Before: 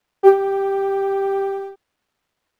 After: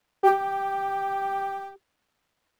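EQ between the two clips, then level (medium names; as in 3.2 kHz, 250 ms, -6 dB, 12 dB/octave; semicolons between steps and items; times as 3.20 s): band-stop 390 Hz, Q 12; 0.0 dB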